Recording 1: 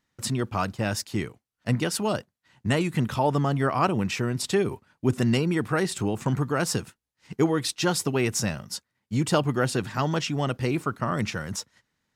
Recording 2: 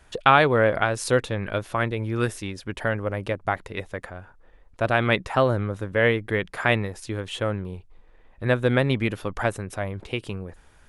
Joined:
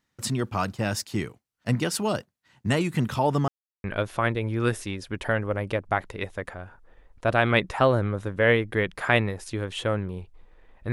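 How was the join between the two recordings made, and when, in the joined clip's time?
recording 1
3.48–3.84 mute
3.84 switch to recording 2 from 1.4 s

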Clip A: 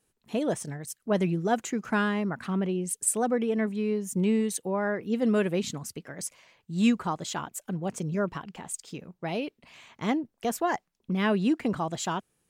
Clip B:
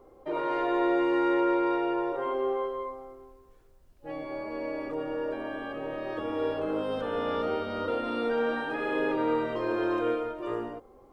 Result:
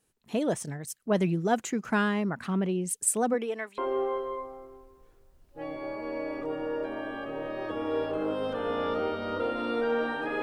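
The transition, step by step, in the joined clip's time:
clip A
3.33–3.78 HPF 250 Hz -> 1300 Hz
3.78 switch to clip B from 2.26 s

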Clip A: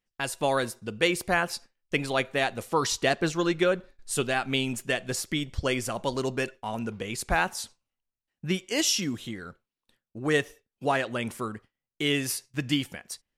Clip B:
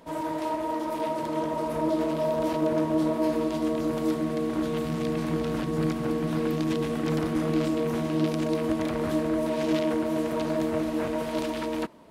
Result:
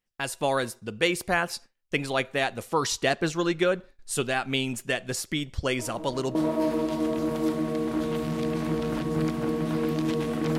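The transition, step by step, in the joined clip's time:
clip A
5.79 add clip B from 2.41 s 0.56 s -15 dB
6.35 switch to clip B from 2.97 s

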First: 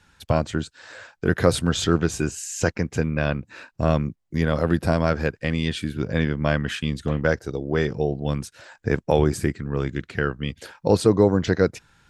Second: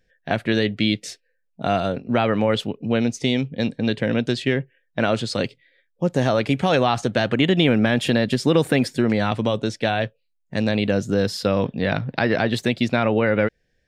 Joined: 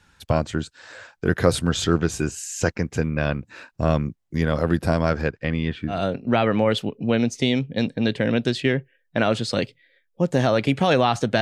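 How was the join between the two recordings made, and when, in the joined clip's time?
first
5.21–6.01 LPF 6400 Hz -> 1200 Hz
5.94 switch to second from 1.76 s, crossfade 0.14 s

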